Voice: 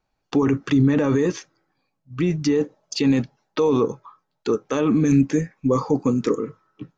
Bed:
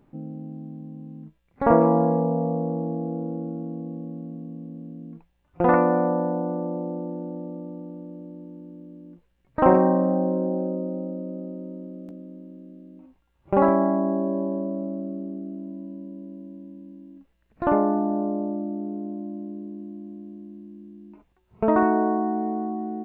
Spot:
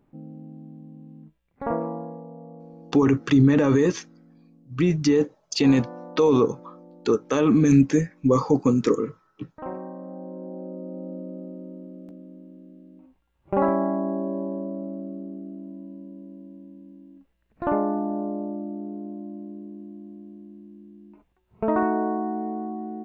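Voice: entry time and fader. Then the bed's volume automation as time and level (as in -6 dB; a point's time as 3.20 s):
2.60 s, +0.5 dB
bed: 1.44 s -5 dB
2.24 s -18 dB
9.94 s -18 dB
11.15 s -3 dB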